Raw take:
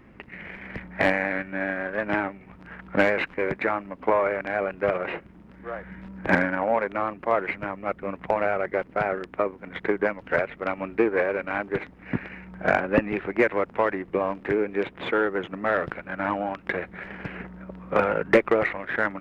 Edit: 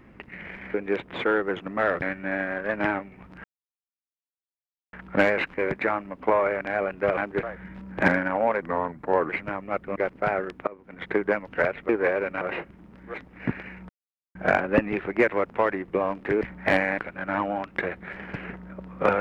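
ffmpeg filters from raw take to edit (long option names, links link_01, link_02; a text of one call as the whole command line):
ffmpeg -i in.wav -filter_complex "[0:a]asplit=16[link_01][link_02][link_03][link_04][link_05][link_06][link_07][link_08][link_09][link_10][link_11][link_12][link_13][link_14][link_15][link_16];[link_01]atrim=end=0.742[link_17];[link_02]atrim=start=14.608:end=15.892[link_18];[link_03]atrim=start=1.308:end=2.73,asetpts=PTS-STARTPTS,afade=type=out:start_time=1.418:duration=0.004:curve=hsin,apad=pad_dur=1.49[link_19];[link_04]atrim=start=2.73:end=4.972,asetpts=PTS-STARTPTS,afade=type=in:duration=0.004:curve=hsin[link_20];[link_05]atrim=start=11.538:end=11.802[link_21];[link_06]atrim=start=5.698:end=6.894[link_22];[link_07]atrim=start=6.89:end=7.44,asetpts=PTS-STARTPTS,asetrate=36162,aresample=44100,atrim=end_sample=29579,asetpts=PTS-STARTPTS[link_23];[link_08]atrim=start=7.436:end=8.112[link_24];[link_09]atrim=start=8.698:end=9.41,asetpts=PTS-STARTPTS,afade=type=out:start_time=0.708:duration=0.004:curve=hsin:silence=0.0668344[link_25];[link_10]atrim=start=9.41:end=10.632,asetpts=PTS-STARTPTS,afade=type=in:duration=0.43:silence=0.0668344[link_26];[link_11]atrim=start=11.018:end=11.542[link_27];[link_12]atrim=start=4.968:end=5.702[link_28];[link_13]atrim=start=11.798:end=12.55,asetpts=PTS-STARTPTS,afade=type=out:start_time=0.748:duration=0.004:curve=hsin,apad=pad_dur=0.46[link_29];[link_14]atrim=start=12.55:end=14.612,asetpts=PTS-STARTPTS,afade=type=in:duration=0.004:curve=hsin[link_30];[link_15]atrim=start=0.738:end=1.312[link_31];[link_16]atrim=start=15.888[link_32];[link_17][link_18]acrossfade=duration=0.004:curve1=hsin:curve2=hsin[link_33];[link_19][link_20]concat=n=2:v=0:a=1[link_34];[link_33][link_34]acrossfade=duration=0.004:curve1=hsin:curve2=hsin[link_35];[link_35][link_21]acrossfade=duration=0.004:curve1=hsin:curve2=hsin[link_36];[link_36][link_22]acrossfade=duration=0.004:curve1=hsin:curve2=hsin[link_37];[link_37][link_23]acrossfade=duration=0.004:curve1=hsin:curve2=hsin[link_38];[link_38][link_24]acrossfade=duration=0.004:curve1=hsin:curve2=hsin[link_39];[link_25][link_26]concat=n=2:v=0:a=1[link_40];[link_39][link_40]acrossfade=duration=0.004:curve1=hsin:curve2=hsin[link_41];[link_41][link_27]acrossfade=duration=0.004:curve1=hsin:curve2=hsin[link_42];[link_42][link_28]acrossfade=duration=0.004:curve1=hsin:curve2=hsin[link_43];[link_29][link_30]concat=n=2:v=0:a=1[link_44];[link_43][link_44]acrossfade=duration=0.004:curve1=hsin:curve2=hsin[link_45];[link_45][link_31]acrossfade=duration=0.004:curve1=hsin:curve2=hsin[link_46];[link_46][link_32]acrossfade=duration=0.004:curve1=hsin:curve2=hsin" out.wav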